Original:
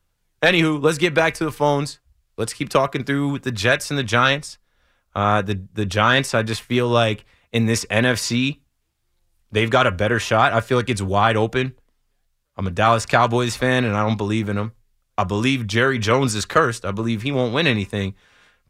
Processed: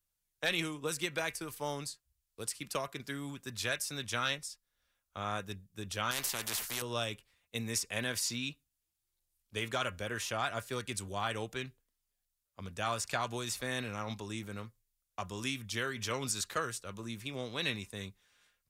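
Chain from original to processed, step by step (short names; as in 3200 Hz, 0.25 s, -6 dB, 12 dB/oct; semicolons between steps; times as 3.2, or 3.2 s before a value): pre-emphasis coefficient 0.8; 6.11–6.82 spectral compressor 4:1; gain -6.5 dB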